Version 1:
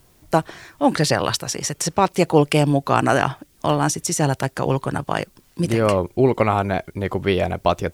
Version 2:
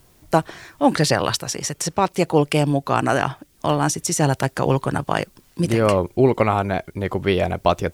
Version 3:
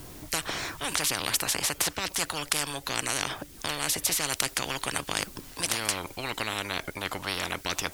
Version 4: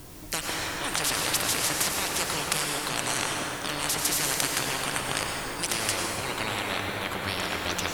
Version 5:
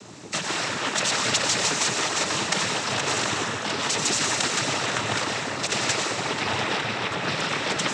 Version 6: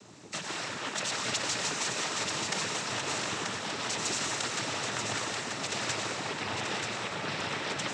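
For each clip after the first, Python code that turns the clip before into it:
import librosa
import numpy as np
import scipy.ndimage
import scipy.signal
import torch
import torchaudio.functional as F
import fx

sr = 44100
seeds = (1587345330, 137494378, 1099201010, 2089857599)

y1 = fx.rider(x, sr, range_db=10, speed_s=2.0)
y1 = F.gain(torch.from_numpy(y1), -1.0).numpy()
y2 = fx.peak_eq(y1, sr, hz=290.0, db=9.0, octaves=0.22)
y2 = fx.spectral_comp(y2, sr, ratio=10.0)
y2 = F.gain(torch.from_numpy(y2), -2.5).numpy()
y3 = fx.rev_plate(y2, sr, seeds[0], rt60_s=4.1, hf_ratio=0.45, predelay_ms=80, drr_db=-1.5)
y3 = F.gain(torch.from_numpy(y3), -1.0).numpy()
y4 = fx.noise_vocoder(y3, sr, seeds[1], bands=12)
y4 = F.gain(torch.from_numpy(y4), 5.0).numpy()
y5 = y4 + 10.0 ** (-5.0 / 20.0) * np.pad(y4, (int(934 * sr / 1000.0), 0))[:len(y4)]
y5 = F.gain(torch.from_numpy(y5), -9.0).numpy()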